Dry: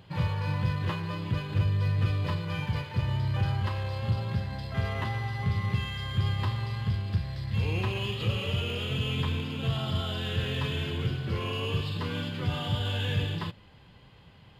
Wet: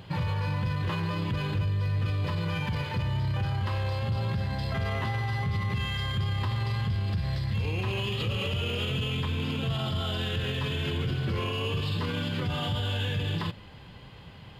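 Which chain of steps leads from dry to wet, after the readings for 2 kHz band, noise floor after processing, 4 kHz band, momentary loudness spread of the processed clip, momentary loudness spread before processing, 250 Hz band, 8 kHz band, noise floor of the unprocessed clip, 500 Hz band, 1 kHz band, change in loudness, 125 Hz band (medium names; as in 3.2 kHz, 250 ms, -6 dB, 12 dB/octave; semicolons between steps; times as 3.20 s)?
+1.5 dB, -47 dBFS, +1.5 dB, 1 LU, 4 LU, +1.0 dB, no reading, -54 dBFS, +1.5 dB, +1.5 dB, +0.5 dB, 0.0 dB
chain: peak limiter -29 dBFS, peak gain reduction 10.5 dB; trim +7 dB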